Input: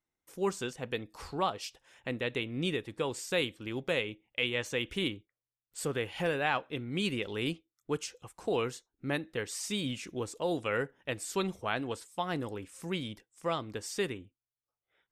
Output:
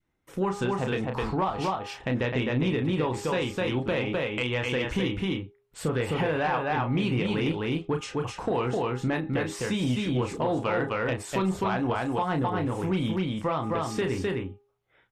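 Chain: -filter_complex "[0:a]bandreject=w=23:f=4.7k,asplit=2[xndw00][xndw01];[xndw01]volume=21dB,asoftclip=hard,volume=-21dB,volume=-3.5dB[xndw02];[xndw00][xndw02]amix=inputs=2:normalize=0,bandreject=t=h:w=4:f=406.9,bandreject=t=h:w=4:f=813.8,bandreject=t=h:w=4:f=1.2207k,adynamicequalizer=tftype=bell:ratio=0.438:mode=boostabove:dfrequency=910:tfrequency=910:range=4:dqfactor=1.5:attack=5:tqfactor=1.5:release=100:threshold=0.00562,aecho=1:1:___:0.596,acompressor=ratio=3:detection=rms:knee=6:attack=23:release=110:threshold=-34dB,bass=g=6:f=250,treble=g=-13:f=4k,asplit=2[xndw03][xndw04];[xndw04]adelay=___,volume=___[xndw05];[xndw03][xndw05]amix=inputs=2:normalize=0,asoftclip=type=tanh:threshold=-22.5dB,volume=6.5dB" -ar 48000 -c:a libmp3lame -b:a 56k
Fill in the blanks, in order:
257, 32, -6.5dB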